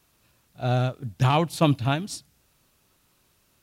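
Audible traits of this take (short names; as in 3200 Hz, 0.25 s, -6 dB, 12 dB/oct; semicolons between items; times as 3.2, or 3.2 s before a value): noise floor -66 dBFS; spectral tilt -6.0 dB/oct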